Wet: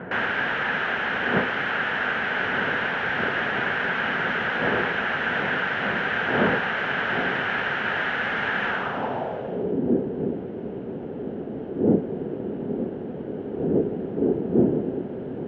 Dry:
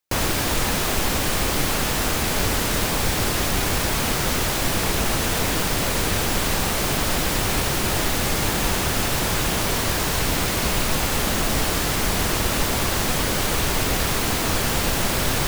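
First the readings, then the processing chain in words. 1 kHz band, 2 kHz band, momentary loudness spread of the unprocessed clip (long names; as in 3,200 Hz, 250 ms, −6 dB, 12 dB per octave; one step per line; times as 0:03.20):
−2.5 dB, +3.0 dB, 0 LU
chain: wind on the microphone 370 Hz −23 dBFS
loudspeaker in its box 240–5,800 Hz, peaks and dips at 320 Hz −10 dB, 590 Hz −3 dB, 1,100 Hz −8 dB, 1,600 Hz +5 dB, 3,000 Hz +9 dB, 4,700 Hz −6 dB
low-pass filter sweep 1,600 Hz → 360 Hz, 0:08.66–0:09.77
level −2.5 dB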